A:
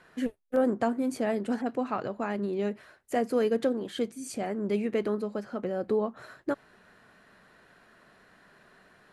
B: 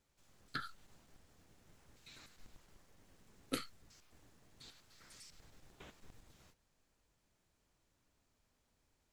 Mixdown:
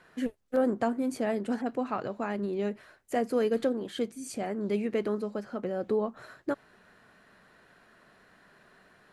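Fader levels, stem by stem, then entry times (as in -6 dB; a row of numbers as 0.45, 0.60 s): -1.0, -16.5 dB; 0.00, 0.00 s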